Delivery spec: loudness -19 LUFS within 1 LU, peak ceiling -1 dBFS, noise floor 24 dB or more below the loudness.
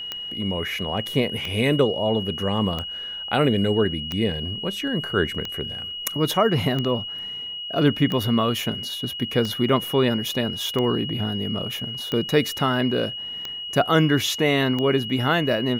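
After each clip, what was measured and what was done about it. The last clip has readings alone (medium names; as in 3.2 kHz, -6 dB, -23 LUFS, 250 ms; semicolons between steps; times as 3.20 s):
clicks found 12; steady tone 2.9 kHz; tone level -30 dBFS; loudness -23.0 LUFS; peak level -7.0 dBFS; loudness target -19.0 LUFS
-> de-click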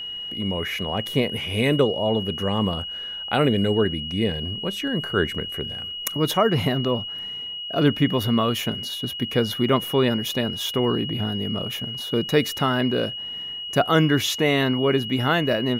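clicks found 0; steady tone 2.9 kHz; tone level -30 dBFS
-> band-stop 2.9 kHz, Q 30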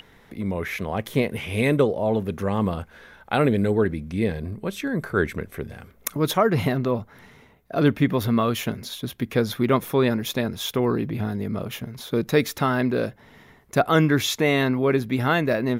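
steady tone not found; loudness -23.5 LUFS; peak level -6.5 dBFS; loudness target -19.0 LUFS
-> trim +4.5 dB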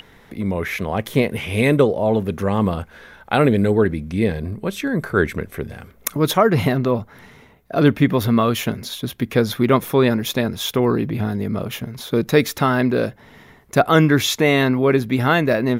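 loudness -19.0 LUFS; peak level -2.0 dBFS; noise floor -49 dBFS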